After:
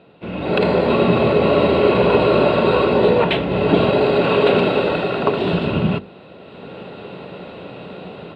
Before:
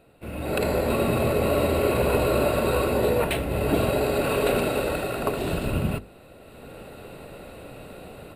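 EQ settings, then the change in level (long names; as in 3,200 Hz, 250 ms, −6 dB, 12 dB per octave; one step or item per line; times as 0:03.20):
loudspeaker in its box 120–4,400 Hz, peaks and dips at 180 Hz +8 dB, 400 Hz +4 dB, 960 Hz +5 dB, 3,300 Hz +7 dB
+6.0 dB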